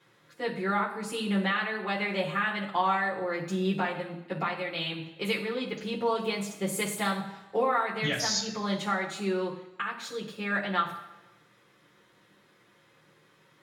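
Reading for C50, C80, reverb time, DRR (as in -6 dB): 8.0 dB, 11.0 dB, 1.0 s, -4.5 dB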